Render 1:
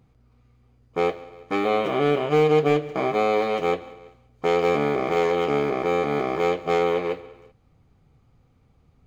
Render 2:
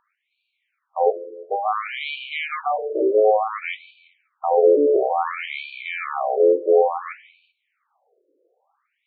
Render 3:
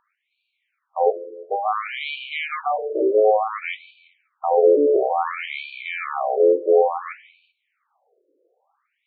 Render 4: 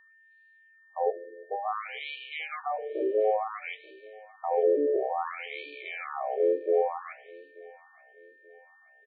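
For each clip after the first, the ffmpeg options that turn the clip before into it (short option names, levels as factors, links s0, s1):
-af "lowshelf=f=190:g=12,afftfilt=real='re*between(b*sr/1024,420*pow(3300/420,0.5+0.5*sin(2*PI*0.57*pts/sr))/1.41,420*pow(3300/420,0.5+0.5*sin(2*PI*0.57*pts/sr))*1.41)':imag='im*between(b*sr/1024,420*pow(3300/420,0.5+0.5*sin(2*PI*0.57*pts/sr))/1.41,420*pow(3300/420,0.5+0.5*sin(2*PI*0.57*pts/sr))*1.41)':win_size=1024:overlap=0.75,volume=2.11"
-af anull
-af "aeval=exprs='val(0)+0.00398*sin(2*PI*1800*n/s)':c=same,aecho=1:1:884|1768|2652:0.0668|0.0294|0.0129,volume=0.355"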